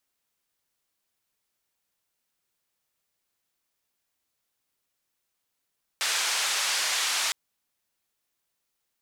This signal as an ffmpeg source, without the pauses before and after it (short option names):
-f lavfi -i "anoisesrc=c=white:d=1.31:r=44100:seed=1,highpass=f=920,lowpass=f=6600,volume=-16.5dB"